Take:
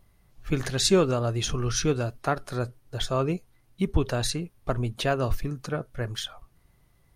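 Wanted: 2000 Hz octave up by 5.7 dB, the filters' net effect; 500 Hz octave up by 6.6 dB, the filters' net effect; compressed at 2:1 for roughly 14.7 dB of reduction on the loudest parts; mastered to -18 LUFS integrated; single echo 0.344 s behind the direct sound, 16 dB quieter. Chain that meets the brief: bell 500 Hz +8 dB; bell 2000 Hz +7.5 dB; compressor 2:1, threshold -39 dBFS; echo 0.344 s -16 dB; gain +17 dB

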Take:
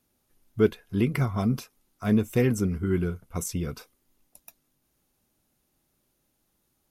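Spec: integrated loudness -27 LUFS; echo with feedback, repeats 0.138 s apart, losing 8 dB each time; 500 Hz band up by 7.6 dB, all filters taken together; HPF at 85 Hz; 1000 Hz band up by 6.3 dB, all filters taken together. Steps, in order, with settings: HPF 85 Hz; bell 500 Hz +8.5 dB; bell 1000 Hz +5.5 dB; feedback echo 0.138 s, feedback 40%, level -8 dB; gain -4.5 dB

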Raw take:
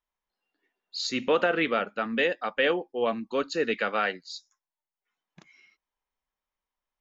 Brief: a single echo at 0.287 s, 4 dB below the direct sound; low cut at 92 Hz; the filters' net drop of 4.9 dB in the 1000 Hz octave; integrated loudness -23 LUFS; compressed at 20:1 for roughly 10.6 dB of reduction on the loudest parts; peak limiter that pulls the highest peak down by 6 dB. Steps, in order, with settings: HPF 92 Hz; bell 1000 Hz -7.5 dB; compressor 20:1, threshold -31 dBFS; limiter -26 dBFS; echo 0.287 s -4 dB; gain +13.5 dB

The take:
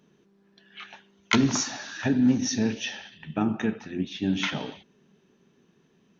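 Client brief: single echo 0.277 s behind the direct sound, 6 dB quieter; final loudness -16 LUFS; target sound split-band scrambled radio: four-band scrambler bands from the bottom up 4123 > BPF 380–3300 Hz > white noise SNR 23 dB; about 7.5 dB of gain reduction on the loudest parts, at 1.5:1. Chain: compressor 1.5:1, threshold -38 dBFS; echo 0.277 s -6 dB; four-band scrambler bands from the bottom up 4123; BPF 380–3300 Hz; white noise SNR 23 dB; gain +15 dB

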